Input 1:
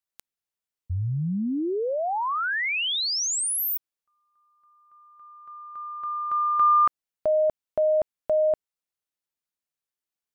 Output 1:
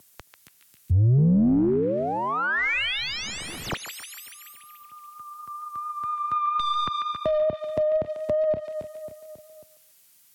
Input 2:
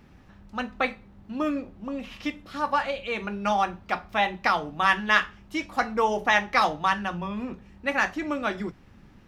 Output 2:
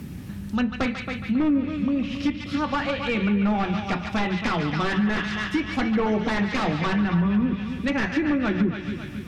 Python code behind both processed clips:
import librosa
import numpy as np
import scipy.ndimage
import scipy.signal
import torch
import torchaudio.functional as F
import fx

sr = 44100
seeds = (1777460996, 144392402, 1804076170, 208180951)

p1 = fx.diode_clip(x, sr, knee_db=-6.0)
p2 = fx.peak_eq(p1, sr, hz=780.0, db=-11.0, octaves=2.4)
p3 = np.clip(p2, -10.0 ** (-25.5 / 20.0), 10.0 ** (-25.5 / 20.0))
p4 = p2 + (p3 * librosa.db_to_amplitude(-9.5))
p5 = fx.dmg_noise_colour(p4, sr, seeds[0], colour='violet', level_db=-65.0)
p6 = fx.vibrato(p5, sr, rate_hz=4.3, depth_cents=23.0)
p7 = scipy.signal.sosfilt(scipy.signal.butter(2, 96.0, 'highpass', fs=sr, output='sos'), p6)
p8 = p7 + fx.echo_feedback(p7, sr, ms=272, feedback_pct=39, wet_db=-12.0, dry=0)
p9 = 10.0 ** (-25.5 / 20.0) * (np.abs((p8 / 10.0 ** (-25.5 / 20.0) + 3.0) % 4.0 - 2.0) - 1.0)
p10 = fx.low_shelf(p9, sr, hz=380.0, db=11.5)
p11 = fx.echo_banded(p10, sr, ms=143, feedback_pct=62, hz=2600.0, wet_db=-5.5)
p12 = fx.env_lowpass_down(p11, sr, base_hz=510.0, full_db=-17.5)
p13 = fx.band_squash(p12, sr, depth_pct=40)
y = p13 * librosa.db_to_amplitude(4.0)